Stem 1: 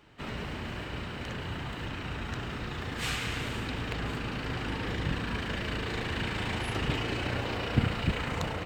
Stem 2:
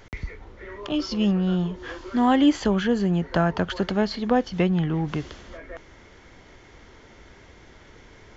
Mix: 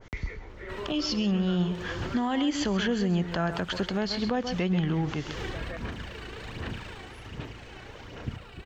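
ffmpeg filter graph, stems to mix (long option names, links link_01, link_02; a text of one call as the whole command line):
ffmpeg -i stem1.wav -i stem2.wav -filter_complex "[0:a]bandreject=frequency=2100:width=12,aphaser=in_gain=1:out_gain=1:delay=2.7:decay=0.58:speed=1.3:type=sinusoidal,adelay=500,volume=-1dB,afade=type=out:start_time=5.38:duration=0.51:silence=0.421697,afade=type=out:start_time=6.78:duration=0.38:silence=0.473151[link_01];[1:a]adynamicequalizer=threshold=0.0112:dfrequency=1600:dqfactor=0.7:tfrequency=1600:tqfactor=0.7:attack=5:release=100:ratio=0.375:range=2.5:mode=boostabove:tftype=highshelf,volume=-1dB,asplit=3[link_02][link_03][link_04];[link_03]volume=-12.5dB[link_05];[link_04]apad=whole_len=403665[link_06];[link_01][link_06]sidechaincompress=threshold=-39dB:ratio=8:attack=16:release=183[link_07];[link_05]aecho=0:1:132:1[link_08];[link_07][link_02][link_08]amix=inputs=3:normalize=0,alimiter=limit=-18.5dB:level=0:latency=1:release=137" out.wav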